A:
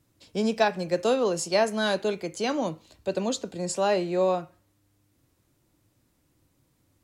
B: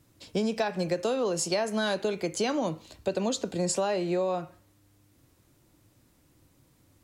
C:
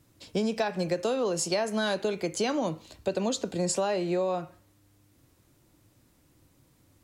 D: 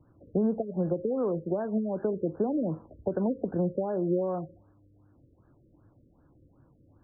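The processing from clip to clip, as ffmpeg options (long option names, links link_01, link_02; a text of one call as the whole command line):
ffmpeg -i in.wav -filter_complex "[0:a]asplit=2[link_01][link_02];[link_02]alimiter=limit=-19.5dB:level=0:latency=1:release=23,volume=-2dB[link_03];[link_01][link_03]amix=inputs=2:normalize=0,acompressor=threshold=-24dB:ratio=12" out.wav
ffmpeg -i in.wav -af anull out.wav
ffmpeg -i in.wav -filter_complex "[0:a]acrossover=split=420|3000[link_01][link_02][link_03];[link_02]acompressor=threshold=-37dB:ratio=6[link_04];[link_01][link_04][link_03]amix=inputs=3:normalize=0,afftfilt=real='re*lt(b*sr/1024,570*pow(1800/570,0.5+0.5*sin(2*PI*2.6*pts/sr)))':imag='im*lt(b*sr/1024,570*pow(1800/570,0.5+0.5*sin(2*PI*2.6*pts/sr)))':win_size=1024:overlap=0.75,volume=3dB" out.wav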